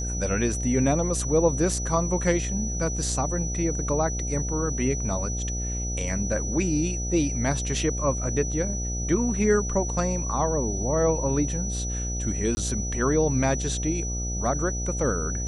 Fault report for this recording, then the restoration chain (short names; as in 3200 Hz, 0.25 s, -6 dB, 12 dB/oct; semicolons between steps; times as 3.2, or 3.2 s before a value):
buzz 60 Hz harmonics 13 -30 dBFS
tone 5900 Hz -32 dBFS
12.55–12.57 gap 20 ms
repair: notch 5900 Hz, Q 30; de-hum 60 Hz, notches 13; interpolate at 12.55, 20 ms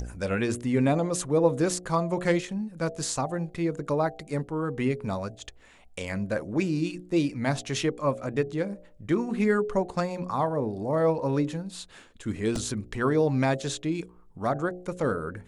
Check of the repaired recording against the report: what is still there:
none